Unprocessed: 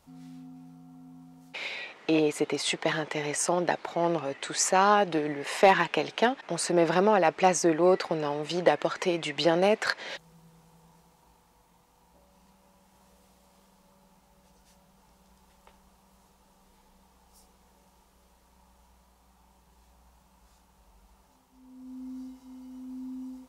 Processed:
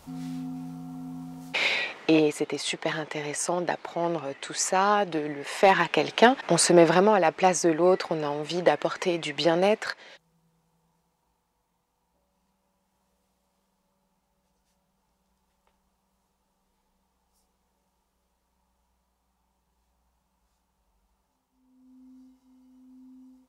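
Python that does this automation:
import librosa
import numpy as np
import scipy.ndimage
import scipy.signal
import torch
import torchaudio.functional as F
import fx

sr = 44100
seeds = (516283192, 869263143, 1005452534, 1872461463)

y = fx.gain(x, sr, db=fx.line((1.73, 11.0), (2.44, -1.0), (5.53, -1.0), (6.55, 10.0), (7.17, 1.0), (9.71, 1.0), (10.15, -12.0)))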